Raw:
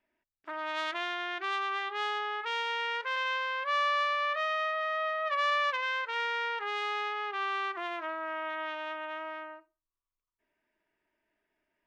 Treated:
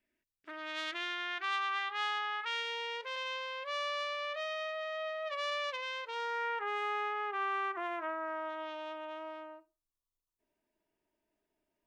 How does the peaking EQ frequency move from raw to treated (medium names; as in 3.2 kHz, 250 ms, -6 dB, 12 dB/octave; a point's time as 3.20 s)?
peaking EQ -12.5 dB 1.3 oct
0.91 s 900 Hz
1.51 s 390 Hz
2.37 s 390 Hz
2.77 s 1.4 kHz
6.02 s 1.4 kHz
6.50 s 4.3 kHz
8.07 s 4.3 kHz
8.65 s 1.8 kHz